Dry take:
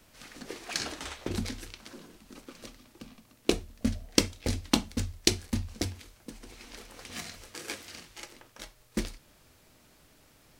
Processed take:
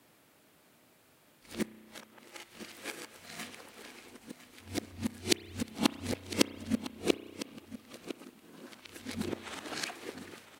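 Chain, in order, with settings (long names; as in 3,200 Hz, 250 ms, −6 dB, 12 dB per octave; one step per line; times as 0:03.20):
played backwards from end to start
high-pass filter 160 Hz 12 dB per octave
parametric band 5,600 Hz −6 dB 0.95 octaves
single-tap delay 1,005 ms −14 dB
spring reverb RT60 1.9 s, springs 32 ms, chirp 55 ms, DRR 15.5 dB
level −1.5 dB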